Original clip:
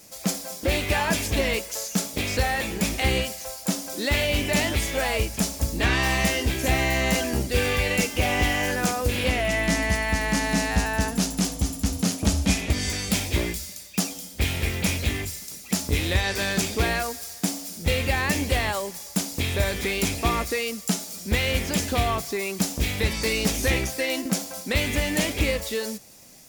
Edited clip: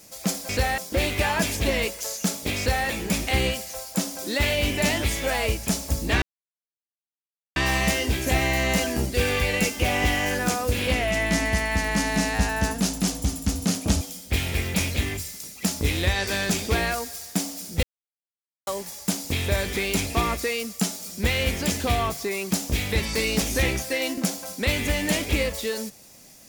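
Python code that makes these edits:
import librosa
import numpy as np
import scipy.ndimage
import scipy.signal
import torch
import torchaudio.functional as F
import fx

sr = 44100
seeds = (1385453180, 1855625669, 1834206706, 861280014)

y = fx.edit(x, sr, fx.duplicate(start_s=2.29, length_s=0.29, to_s=0.49),
    fx.insert_silence(at_s=5.93, length_s=1.34),
    fx.cut(start_s=12.38, length_s=1.71),
    fx.silence(start_s=17.91, length_s=0.84), tone=tone)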